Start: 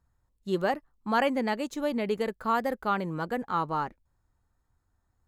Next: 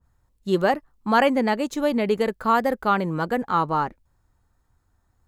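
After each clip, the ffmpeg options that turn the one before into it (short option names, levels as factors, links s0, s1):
-af "adynamicequalizer=threshold=0.0158:dfrequency=1600:dqfactor=0.7:tfrequency=1600:tqfactor=0.7:attack=5:release=100:ratio=0.375:range=2:mode=cutabove:tftype=highshelf,volume=2.24"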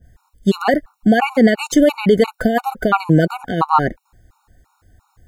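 -af "alimiter=level_in=7.5:limit=0.891:release=50:level=0:latency=1,afftfilt=real='re*gt(sin(2*PI*2.9*pts/sr)*(1-2*mod(floor(b*sr/1024/740),2)),0)':imag='im*gt(sin(2*PI*2.9*pts/sr)*(1-2*mod(floor(b*sr/1024/740),2)),0)':win_size=1024:overlap=0.75,volume=0.891"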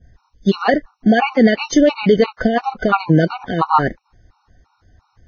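-ar 16000 -c:a libvorbis -b:a 16k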